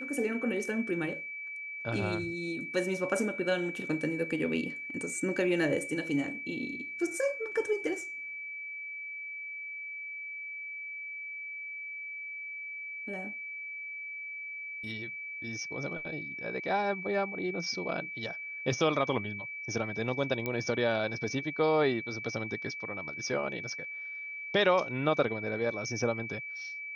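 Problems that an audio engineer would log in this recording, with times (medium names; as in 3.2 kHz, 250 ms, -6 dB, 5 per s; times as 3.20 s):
whine 2.3 kHz -38 dBFS
20.46 s: pop -19 dBFS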